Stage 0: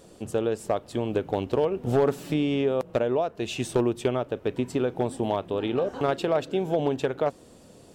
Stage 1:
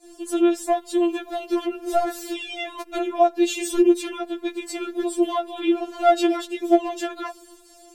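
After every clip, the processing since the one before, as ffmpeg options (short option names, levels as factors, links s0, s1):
-af "agate=range=0.0224:threshold=0.00398:ratio=3:detection=peak,highshelf=f=4600:g=7.5,afftfilt=real='re*4*eq(mod(b,16),0)':imag='im*4*eq(mod(b,16),0)':win_size=2048:overlap=0.75,volume=2"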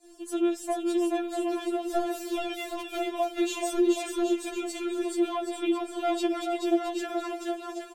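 -filter_complex "[0:a]acrossover=split=340|3000[s0][s1][s2];[s1]acompressor=threshold=0.1:ratio=6[s3];[s0][s3][s2]amix=inputs=3:normalize=0,asplit=2[s4][s5];[s5]aecho=0:1:430|774|1049|1269|1445:0.631|0.398|0.251|0.158|0.1[s6];[s4][s6]amix=inputs=2:normalize=0,volume=0.473"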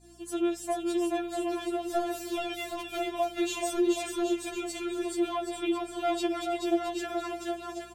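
-af "lowshelf=f=260:g=-7,aeval=exprs='val(0)+0.00112*(sin(2*PI*60*n/s)+sin(2*PI*2*60*n/s)/2+sin(2*PI*3*60*n/s)/3+sin(2*PI*4*60*n/s)/4+sin(2*PI*5*60*n/s)/5)':c=same"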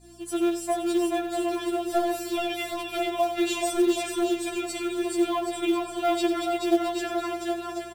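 -filter_complex "[0:a]bandreject=f=6500:w=11,aecho=1:1:91:0.282,asplit=2[s0][s1];[s1]acrusher=bits=4:mode=log:mix=0:aa=0.000001,volume=0.631[s2];[s0][s2]amix=inputs=2:normalize=0"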